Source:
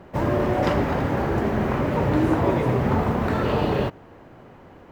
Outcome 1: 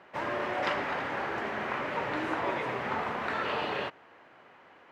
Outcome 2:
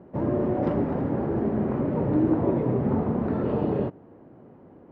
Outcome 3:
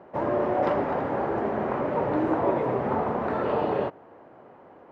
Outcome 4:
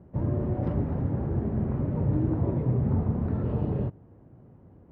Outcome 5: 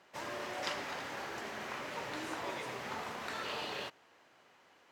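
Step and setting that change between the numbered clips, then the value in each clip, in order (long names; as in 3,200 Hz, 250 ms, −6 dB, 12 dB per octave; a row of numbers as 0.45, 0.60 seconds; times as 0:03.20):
resonant band-pass, frequency: 2,200, 260, 690, 100, 6,000 Hertz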